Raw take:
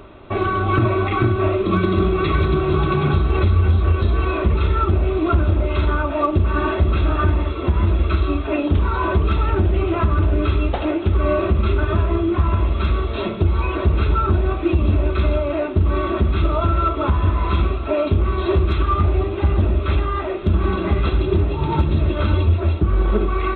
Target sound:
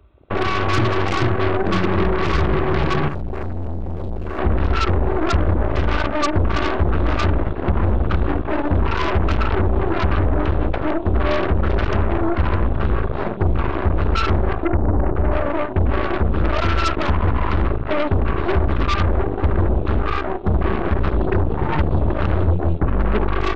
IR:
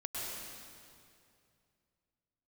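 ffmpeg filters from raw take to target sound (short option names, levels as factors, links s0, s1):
-filter_complex "[0:a]asettb=1/sr,asplit=3[s0][s1][s2];[s0]atrim=end=3.084[s3];[s1]atrim=start=3.08:end=4.39,asetpts=PTS-STARTPTS,afade=t=in:d=0.004:c=qsin,afade=t=out:st=1.306:d=0.004:c=qsin,volume=15,asoftclip=hard,volume=0.0668[s4];[s2]atrim=start=4.386[s5];[s3][s4]acrossfade=d=0.004:c1=hsin:c2=qsin[s6];[s6][s5]acrossfade=d=0.004:c1=qsin:c2=hsin,asettb=1/sr,asplit=3[s7][s8][s9];[s7]atrim=end=14.654[s10];[s8]atrim=start=14.65:end=15.32,asetpts=PTS-STARTPTS,afade=t=in:d=0.004:c=qsin,afade=t=out:st=0.666:d=0.004:c=qsin,lowpass=1000[s11];[s9]atrim=start=15.316[s12];[s10][s11]acrossfade=d=0.004:c1=hsin:c2=qsin[s13];[s13][s12]acrossfade=d=0.004:c1=qsin:c2=hsin,afwtdn=0.0447,aeval=exprs='0.422*(cos(1*acos(clip(val(0)/0.422,-1,1)))-cos(1*PI/2))+0.106*(cos(8*acos(clip(val(0)/0.422,-1,1)))-cos(8*PI/2))':c=same,volume=0.75"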